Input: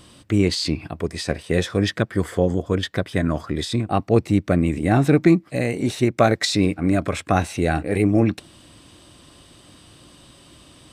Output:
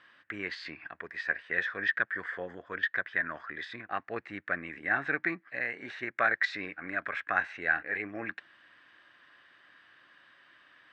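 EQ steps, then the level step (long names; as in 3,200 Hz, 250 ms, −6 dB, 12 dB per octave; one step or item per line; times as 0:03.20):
resonant band-pass 1,700 Hz, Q 6.6
high-frequency loss of the air 130 metres
+8.0 dB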